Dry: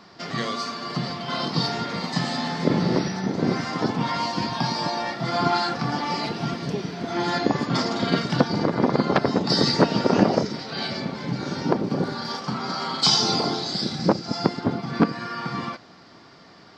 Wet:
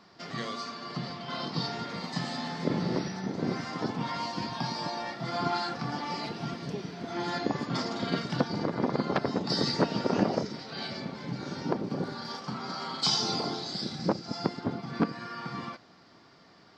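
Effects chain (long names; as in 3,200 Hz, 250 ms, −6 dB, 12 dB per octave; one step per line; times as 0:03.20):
0:00.60–0:01.79: low-pass filter 7,200 Hz 12 dB per octave
level −8 dB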